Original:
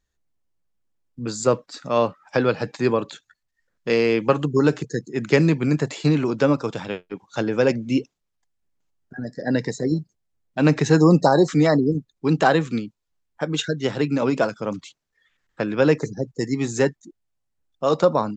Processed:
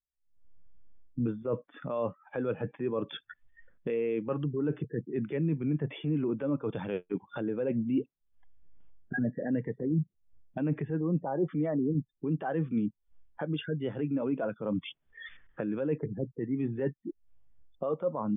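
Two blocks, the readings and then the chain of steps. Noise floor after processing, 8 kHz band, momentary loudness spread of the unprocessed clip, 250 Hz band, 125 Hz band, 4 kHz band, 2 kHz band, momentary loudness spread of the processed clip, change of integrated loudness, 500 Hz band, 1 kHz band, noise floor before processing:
-78 dBFS, under -40 dB, 14 LU, -9.5 dB, -10.0 dB, -16.0 dB, -15.5 dB, 8 LU, -11.5 dB, -12.0 dB, -16.0 dB, -77 dBFS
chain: recorder AGC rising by 66 dB/s; transient shaper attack -5 dB, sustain 0 dB; reverse; compressor 6:1, threshold -24 dBFS, peak gain reduction 13 dB; reverse; brick-wall FIR low-pass 3600 Hz; spectral expander 1.5:1; gain -7 dB

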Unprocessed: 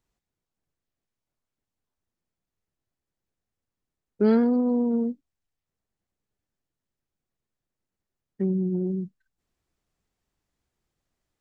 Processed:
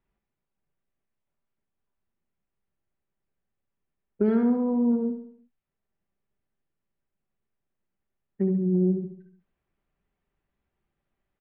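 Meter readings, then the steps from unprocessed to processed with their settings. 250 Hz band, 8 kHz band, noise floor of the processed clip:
0.0 dB, n/a, -84 dBFS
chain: LPF 2900 Hz 24 dB/oct; comb 5.1 ms, depth 30%; compressor, threshold -19 dBFS, peak gain reduction 5.5 dB; feedback echo 71 ms, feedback 48%, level -9 dB

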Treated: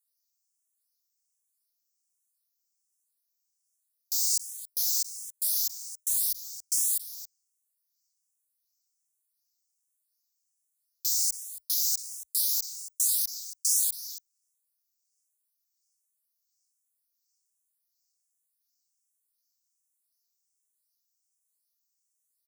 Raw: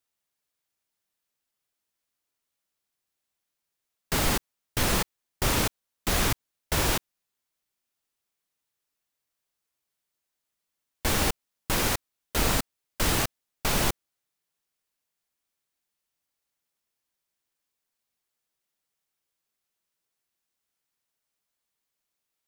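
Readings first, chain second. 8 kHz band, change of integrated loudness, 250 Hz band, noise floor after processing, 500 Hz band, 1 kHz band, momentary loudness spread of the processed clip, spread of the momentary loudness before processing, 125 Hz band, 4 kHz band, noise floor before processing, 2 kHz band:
+5.0 dB, +1.0 dB, under -40 dB, -80 dBFS, under -30 dB, under -30 dB, 12 LU, 8 LU, under -40 dB, -3.5 dB, -84 dBFS, under -35 dB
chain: inverse Chebyshev band-stop 130–2900 Hz, stop band 40 dB; LFO high-pass sine 1.4 Hz 580–5200 Hz; echo 0.276 s -14.5 dB; endless phaser +1.3 Hz; gain +8 dB

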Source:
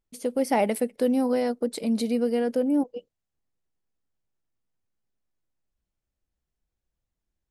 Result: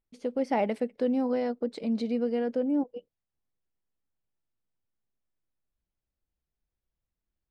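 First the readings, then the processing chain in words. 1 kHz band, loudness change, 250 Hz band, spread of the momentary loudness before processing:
-4.0 dB, -4.0 dB, -3.5 dB, 5 LU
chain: air absorption 150 m; gain -3.5 dB

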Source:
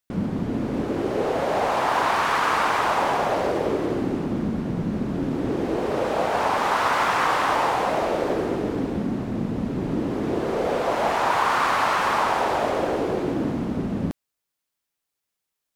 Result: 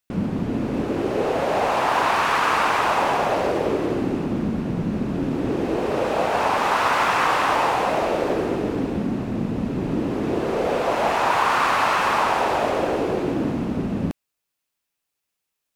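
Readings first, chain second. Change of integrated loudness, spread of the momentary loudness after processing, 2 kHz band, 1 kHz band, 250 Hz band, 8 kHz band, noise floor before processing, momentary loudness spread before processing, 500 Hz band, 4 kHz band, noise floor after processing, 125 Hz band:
+1.5 dB, 6 LU, +2.0 dB, +1.5 dB, +1.5 dB, +1.5 dB, -83 dBFS, 6 LU, +1.5 dB, +2.0 dB, -81 dBFS, +1.5 dB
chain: bell 2600 Hz +4.5 dB 0.21 oct; gain +1.5 dB

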